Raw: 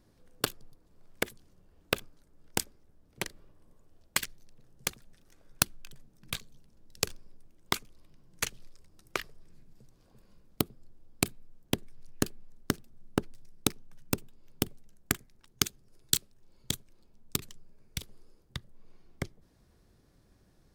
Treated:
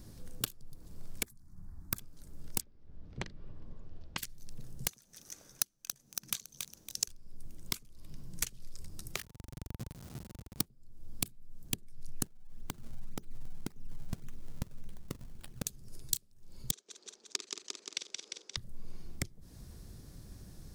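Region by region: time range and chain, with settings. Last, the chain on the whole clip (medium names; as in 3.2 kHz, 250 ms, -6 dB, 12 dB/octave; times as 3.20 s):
1.25–1.98 s: static phaser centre 1.2 kHz, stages 4 + tape noise reduction on one side only decoder only
2.61–4.18 s: Bessel low-pass 3 kHz, order 4 + hum notches 50/100/150/200/250/300 Hz
4.88–7.08 s: high-pass 470 Hz 6 dB/octave + peaking EQ 6.1 kHz +11 dB 0.24 oct + bit-crushed delay 279 ms, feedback 35%, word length 7-bit, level -13 dB
9.16–10.66 s: square wave that keeps the level + high-pass 77 Hz + band-stop 900 Hz, Q 29
12.25–15.67 s: compression 4:1, threshold -45 dBFS + decimation with a swept rate 33×, swing 160% 1.8 Hz
16.71–18.57 s: elliptic band-pass 370–6300 Hz, stop band 50 dB + doubling 49 ms -9 dB + feedback delay 175 ms, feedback 45%, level -8 dB
whole clip: compression 12:1, threshold -46 dBFS; tone controls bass +9 dB, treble +10 dB; trim +6.5 dB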